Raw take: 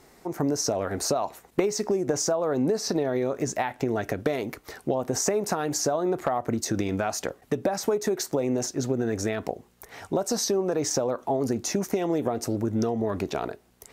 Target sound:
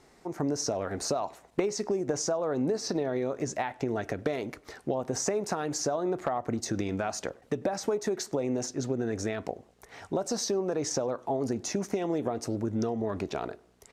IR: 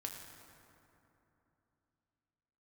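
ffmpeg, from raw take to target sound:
-filter_complex "[0:a]lowpass=8500,asplit=2[link_01][link_02];[link_02]adelay=99,lowpass=frequency=1600:poles=1,volume=-23dB,asplit=2[link_03][link_04];[link_04]adelay=99,lowpass=frequency=1600:poles=1,volume=0.48,asplit=2[link_05][link_06];[link_06]adelay=99,lowpass=frequency=1600:poles=1,volume=0.48[link_07];[link_03][link_05][link_07]amix=inputs=3:normalize=0[link_08];[link_01][link_08]amix=inputs=2:normalize=0,volume=-4dB"

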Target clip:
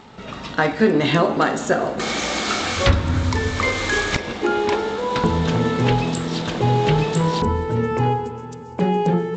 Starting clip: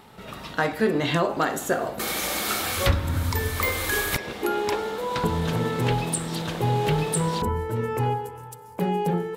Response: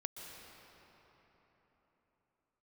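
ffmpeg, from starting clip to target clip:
-filter_complex "[0:a]asplit=2[link_01][link_02];[link_02]equalizer=frequency=250:width_type=o:width=0.83:gain=13.5[link_03];[1:a]atrim=start_sample=2205,asetrate=43659,aresample=44100[link_04];[link_03][link_04]afir=irnorm=-1:irlink=0,volume=-11dB[link_05];[link_01][link_05]amix=inputs=2:normalize=0,volume=3.5dB" -ar 16000 -c:a g722

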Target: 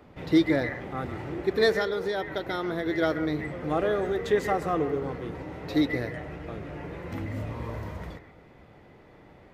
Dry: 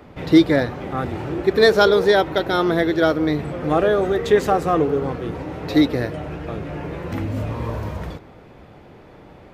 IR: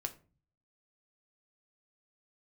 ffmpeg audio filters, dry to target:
-filter_complex "[0:a]asettb=1/sr,asplit=3[link_01][link_02][link_03];[link_01]atrim=end=1.744[link_04];[link_02]atrim=start=1.74:end=2.86,asetpts=PTS-STARTPTS,afade=type=in:duration=0.004:curve=qsin,afade=type=out:start_time=1.116:duration=0.004:curve=qsin,acompressor=threshold=-19dB:ratio=3[link_05];[link_03]atrim=start=2.856[link_06];[link_04][link_05]acrossfade=duration=0.004:curve1=hsin:curve2=qsin[link_07];[link_07][link_06]acrossfade=duration=0.004:curve1=qsin:curve2=hsin,asplit=2[link_08][link_09];[link_09]lowpass=frequency=2000:width_type=q:width=14[link_10];[1:a]atrim=start_sample=2205,adelay=135[link_11];[link_10][link_11]afir=irnorm=-1:irlink=0,volume=-15dB[link_12];[link_08][link_12]amix=inputs=2:normalize=0,volume=-8.5dB"

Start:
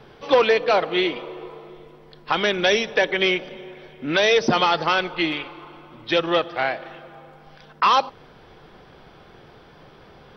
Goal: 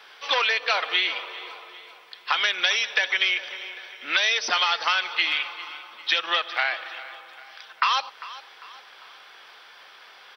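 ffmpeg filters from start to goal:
ffmpeg -i in.wav -af "highpass=1500,acompressor=threshold=-27dB:ratio=6,aecho=1:1:399|798|1197|1596:0.141|0.0636|0.0286|0.0129,volume=8dB" out.wav

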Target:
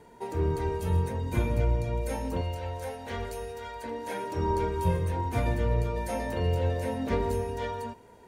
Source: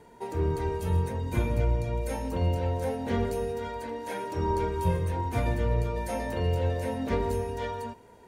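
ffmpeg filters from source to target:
ffmpeg -i in.wav -filter_complex "[0:a]asettb=1/sr,asplit=3[link_01][link_02][link_03];[link_01]atrim=end=2.414[link_04];[link_02]atrim=start=2.41:end=3.84,asetpts=PTS-STARTPTS,afade=type=in:duration=0.004:curve=qsin,afade=type=out:start_time=1.426:duration=0.004:curve=qsin,equalizer=frequency=200:width=0.53:gain=-14[link_05];[link_03]atrim=start=3.836[link_06];[link_04][link_05]acrossfade=duration=0.004:curve1=hsin:curve2=qsin[link_07];[link_07][link_06]acrossfade=duration=0.004:curve1=qsin:curve2=hsin" out.wav

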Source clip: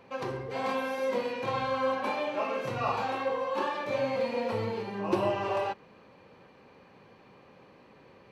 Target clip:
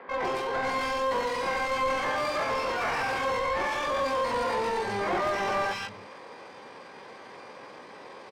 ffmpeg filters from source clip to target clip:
ffmpeg -i in.wav -filter_complex "[0:a]acrossover=split=160|1300[link_01][link_02][link_03];[link_03]adelay=150[link_04];[link_01]adelay=320[link_05];[link_05][link_02][link_04]amix=inputs=3:normalize=0,asplit=2[link_06][link_07];[link_07]highpass=frequency=720:poles=1,volume=28dB,asoftclip=type=tanh:threshold=-15dB[link_08];[link_06][link_08]amix=inputs=2:normalize=0,lowpass=frequency=1100:poles=1,volume=-6dB,asplit=2[link_09][link_10];[link_10]asetrate=88200,aresample=44100,atempo=0.5,volume=-1dB[link_11];[link_09][link_11]amix=inputs=2:normalize=0,volume=-7dB" out.wav

